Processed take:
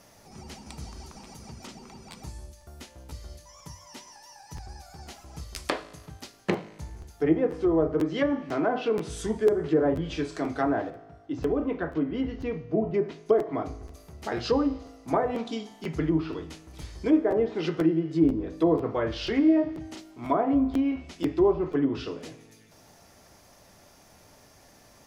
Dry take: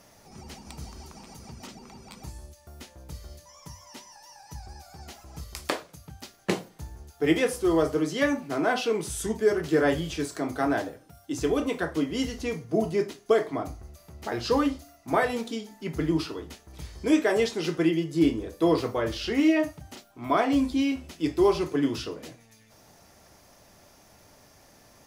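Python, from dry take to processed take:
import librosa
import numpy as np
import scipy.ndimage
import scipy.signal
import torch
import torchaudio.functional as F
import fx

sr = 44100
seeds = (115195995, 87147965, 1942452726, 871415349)

y = fx.env_lowpass_down(x, sr, base_hz=840.0, full_db=-19.5)
y = fx.spacing_loss(y, sr, db_at_10k=26, at=(10.9, 12.94))
y = fx.comb_fb(y, sr, f0_hz=53.0, decay_s=1.4, harmonics='all', damping=0.0, mix_pct=50)
y = fx.buffer_crackle(y, sr, first_s=0.64, period_s=0.49, block=512, kind='repeat')
y = y * librosa.db_to_amplitude(5.5)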